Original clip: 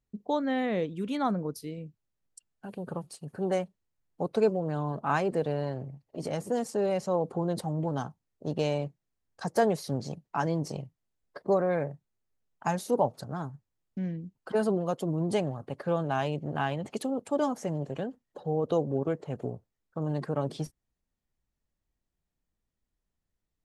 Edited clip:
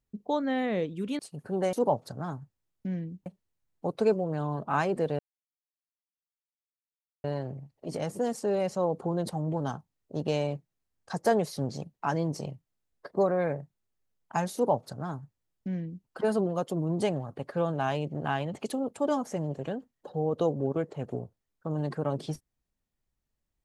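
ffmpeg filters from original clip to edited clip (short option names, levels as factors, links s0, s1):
-filter_complex "[0:a]asplit=5[s0][s1][s2][s3][s4];[s0]atrim=end=1.192[s5];[s1]atrim=start=3.078:end=3.622[s6];[s2]atrim=start=12.848:end=14.382[s7];[s3]atrim=start=3.618:end=5.55,asetpts=PTS-STARTPTS,afade=t=out:st=1.928:d=0.004:c=hsin,apad=pad_dur=2.05[s8];[s4]atrim=start=5.55,asetpts=PTS-STARTPTS,afade=t=in:d=0.004:c=hsin[s9];[s5][s6]acrossfade=d=0.004:c1=hsin:c2=hsin[s10];[s10][s7]acrossfade=d=0.004:c1=hsin:c2=hsin[s11];[s8][s9]concat=n=2:v=0:a=1[s12];[s11][s12]acrossfade=d=0.004:c1=hsin:c2=hsin"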